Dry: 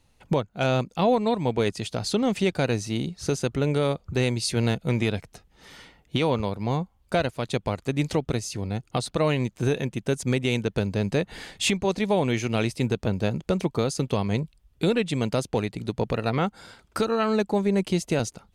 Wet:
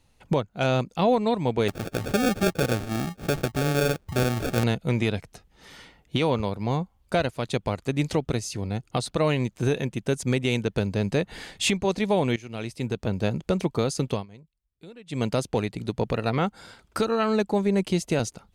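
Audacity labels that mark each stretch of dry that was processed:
1.680000	4.640000	sample-rate reducer 1 kHz
12.360000	13.260000	fade in, from -17.5 dB
14.110000	15.210000	dip -22.5 dB, fades 0.15 s

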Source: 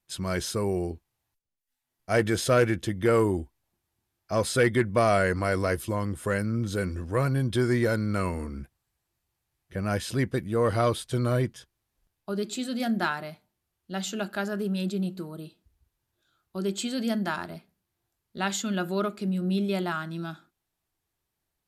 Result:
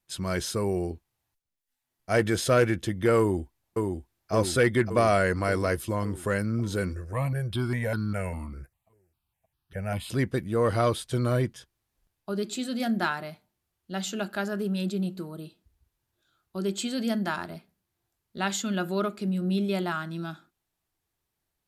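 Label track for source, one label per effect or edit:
3.190000	4.320000	echo throw 570 ms, feedback 65%, level -3.5 dB
6.930000	10.100000	stepped phaser 5 Hz 880–2100 Hz

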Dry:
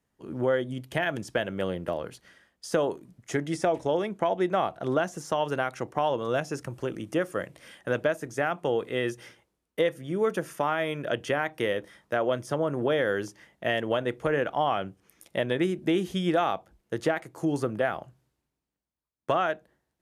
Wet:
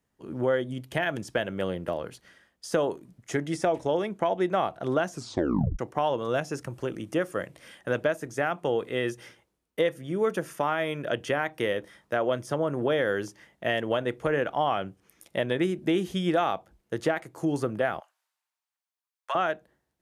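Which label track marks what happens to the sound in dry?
5.100000	5.100000	tape stop 0.69 s
18.000000	19.350000	high-pass 830 Hz 24 dB/octave

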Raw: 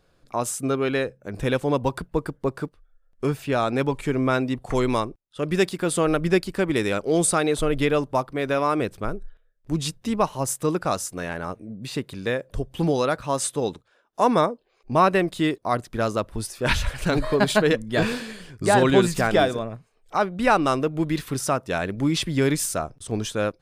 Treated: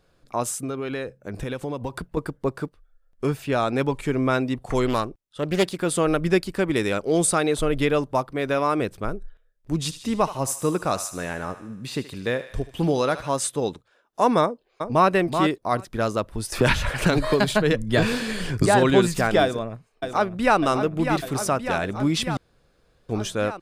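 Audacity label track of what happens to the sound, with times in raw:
0.530000	2.170000	compression, threshold -25 dBFS
4.860000	5.810000	loudspeaker Doppler distortion depth 0.33 ms
9.760000	13.340000	thinning echo 76 ms, feedback 63%, high-pass 790 Hz, level -11.5 dB
14.420000	15.090000	echo throw 380 ms, feedback 10%, level -6.5 dB
16.520000	18.660000	three bands compressed up and down depth 100%
19.420000	20.590000	echo throw 600 ms, feedback 75%, level -7.5 dB
22.370000	23.090000	room tone

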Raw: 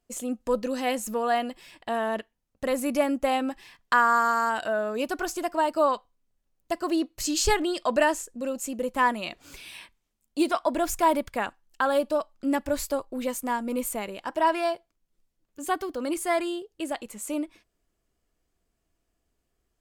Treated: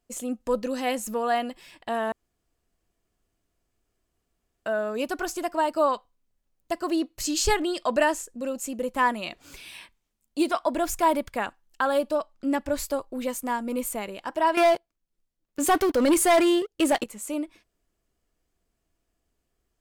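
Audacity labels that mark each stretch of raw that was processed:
2.120000	4.660000	room tone
12.150000	12.780000	treble shelf 11 kHz -8.5 dB
14.570000	17.040000	waveshaping leveller passes 3

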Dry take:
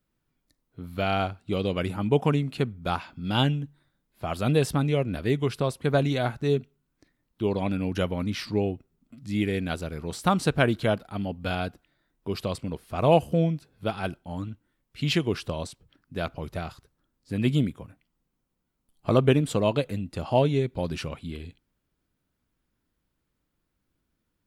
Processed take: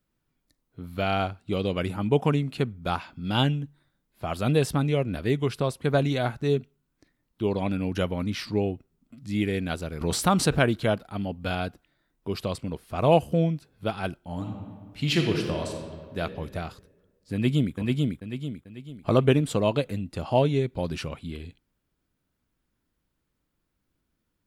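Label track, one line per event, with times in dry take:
10.010000	10.590000	level flattener amount 50%
14.160000	16.190000	reverb throw, RT60 1.7 s, DRR 2.5 dB
17.330000	17.750000	echo throw 440 ms, feedback 40%, level -2 dB

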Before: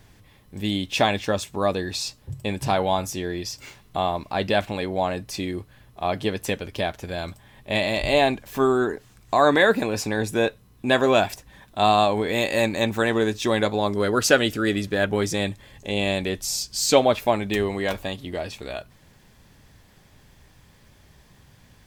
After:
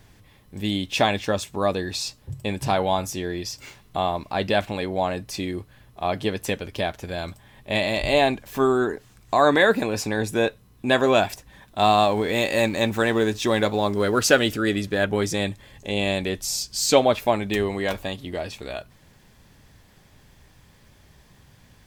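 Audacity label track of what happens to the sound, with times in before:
11.780000	14.560000	companding laws mixed up coded by mu

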